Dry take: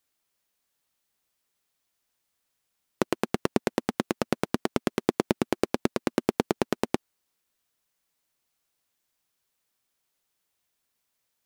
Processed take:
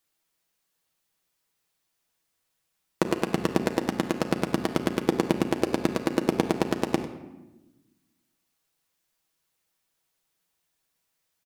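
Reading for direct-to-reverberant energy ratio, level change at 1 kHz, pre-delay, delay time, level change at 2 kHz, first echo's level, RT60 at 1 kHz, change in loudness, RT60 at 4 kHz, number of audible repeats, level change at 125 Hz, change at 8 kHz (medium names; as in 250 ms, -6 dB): 3.5 dB, +1.5 dB, 6 ms, 98 ms, +1.5 dB, -15.0 dB, 0.95 s, +2.0 dB, 0.65 s, 1, +4.0 dB, +1.0 dB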